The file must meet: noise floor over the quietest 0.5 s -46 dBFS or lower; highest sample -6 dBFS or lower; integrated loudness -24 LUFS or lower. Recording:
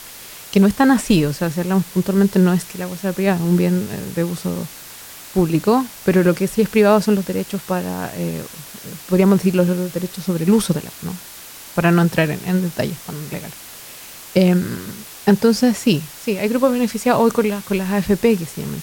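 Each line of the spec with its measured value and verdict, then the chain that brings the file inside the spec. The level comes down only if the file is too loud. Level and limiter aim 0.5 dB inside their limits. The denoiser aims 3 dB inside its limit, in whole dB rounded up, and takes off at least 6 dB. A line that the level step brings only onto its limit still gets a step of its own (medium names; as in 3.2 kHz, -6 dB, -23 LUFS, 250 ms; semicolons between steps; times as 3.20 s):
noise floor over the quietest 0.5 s -38 dBFS: fail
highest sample -2.0 dBFS: fail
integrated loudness -18.0 LUFS: fail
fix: noise reduction 6 dB, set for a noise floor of -38 dBFS; trim -6.5 dB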